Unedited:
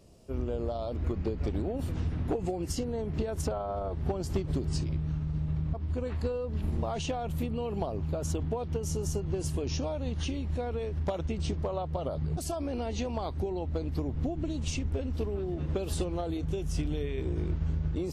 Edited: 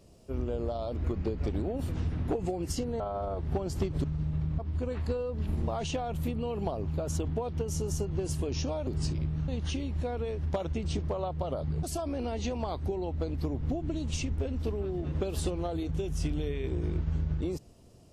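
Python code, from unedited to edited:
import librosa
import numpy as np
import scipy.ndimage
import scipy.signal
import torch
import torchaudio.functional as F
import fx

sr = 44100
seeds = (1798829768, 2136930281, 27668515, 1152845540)

y = fx.edit(x, sr, fx.cut(start_s=3.0, length_s=0.54),
    fx.move(start_s=4.58, length_s=0.61, to_s=10.02), tone=tone)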